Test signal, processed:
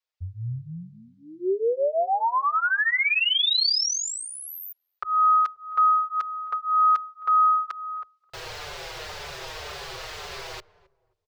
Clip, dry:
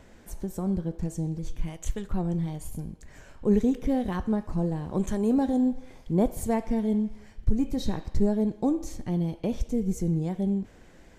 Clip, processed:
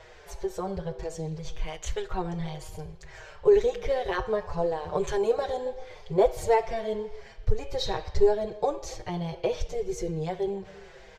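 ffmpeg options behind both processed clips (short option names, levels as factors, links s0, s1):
-filter_complex "[0:a]firequalizer=gain_entry='entry(140,0);entry(260,-27);entry(380,8);entry(4600,10);entry(9400,-6)':delay=0.05:min_phase=1,asplit=2[s0][s1];[s1]adelay=266,lowpass=f=820:p=1,volume=0.119,asplit=2[s2][s3];[s3]adelay=266,lowpass=f=820:p=1,volume=0.32,asplit=2[s4][s5];[s5]adelay=266,lowpass=f=820:p=1,volume=0.32[s6];[s2][s4][s6]amix=inputs=3:normalize=0[s7];[s0][s7]amix=inputs=2:normalize=0,asplit=2[s8][s9];[s9]adelay=5.8,afreqshift=-1.9[s10];[s8][s10]amix=inputs=2:normalize=1,volume=1.19"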